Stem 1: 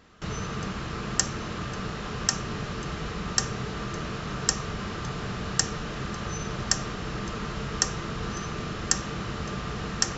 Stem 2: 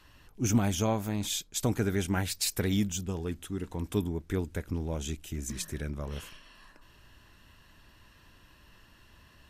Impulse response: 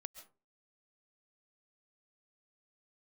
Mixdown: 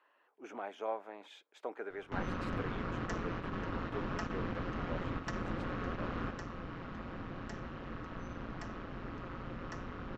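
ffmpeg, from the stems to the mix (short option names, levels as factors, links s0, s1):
-filter_complex "[0:a]aeval=exprs='val(0)*sin(2*PI*88*n/s)':c=same,asoftclip=type=tanh:threshold=0.0891,adelay=1900,volume=0.891[s0];[1:a]highpass=f=450:w=0.5412,highpass=f=450:w=1.3066,equalizer=f=5900:t=o:w=2.2:g=-10,volume=0.596,asplit=2[s1][s2];[s2]apad=whole_len=532519[s3];[s0][s3]sidechaingate=range=0.501:threshold=0.00141:ratio=16:detection=peak[s4];[s4][s1]amix=inputs=2:normalize=0,lowpass=2100"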